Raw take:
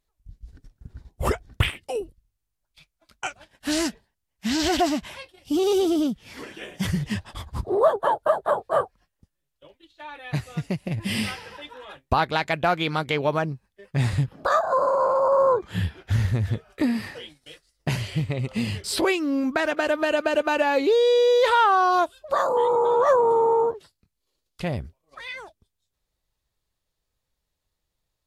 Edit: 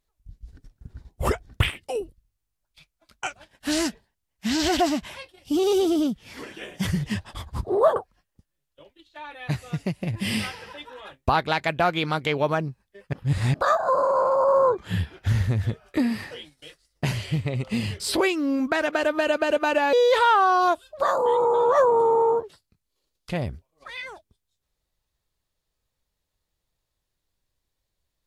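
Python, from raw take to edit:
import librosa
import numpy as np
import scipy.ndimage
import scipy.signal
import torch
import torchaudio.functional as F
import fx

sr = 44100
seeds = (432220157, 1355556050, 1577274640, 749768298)

y = fx.edit(x, sr, fx.cut(start_s=7.96, length_s=0.84),
    fx.reverse_span(start_s=13.97, length_s=0.41),
    fx.cut(start_s=20.77, length_s=0.47), tone=tone)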